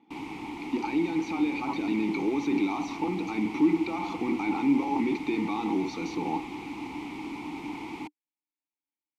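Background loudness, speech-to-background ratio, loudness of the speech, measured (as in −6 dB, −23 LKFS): −38.0 LKFS, 9.0 dB, −29.0 LKFS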